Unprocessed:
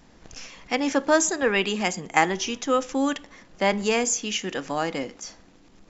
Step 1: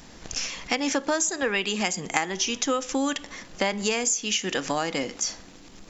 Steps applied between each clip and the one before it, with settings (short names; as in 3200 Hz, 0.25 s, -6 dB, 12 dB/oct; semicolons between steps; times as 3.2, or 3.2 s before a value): high shelf 2800 Hz +8.5 dB; compressor 6:1, threshold -28 dBFS, peak gain reduction 15.5 dB; gain +5.5 dB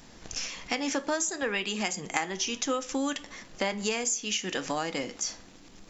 flange 0.56 Hz, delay 8 ms, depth 3.9 ms, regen -75%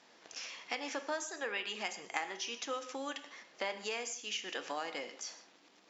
BPF 440–4900 Hz; non-linear reverb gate 0.18 s flat, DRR 11.5 dB; gain -6.5 dB